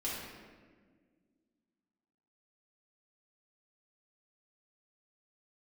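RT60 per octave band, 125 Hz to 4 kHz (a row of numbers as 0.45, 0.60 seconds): 2.2, 2.7, 1.9, 1.3, 1.3, 1.0 seconds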